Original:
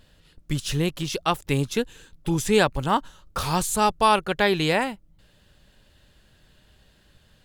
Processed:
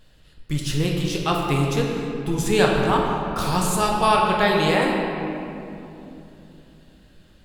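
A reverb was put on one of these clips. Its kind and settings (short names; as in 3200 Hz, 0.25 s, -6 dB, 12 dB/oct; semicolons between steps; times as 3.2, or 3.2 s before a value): shoebox room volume 130 m³, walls hard, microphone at 0.51 m; gain -1.5 dB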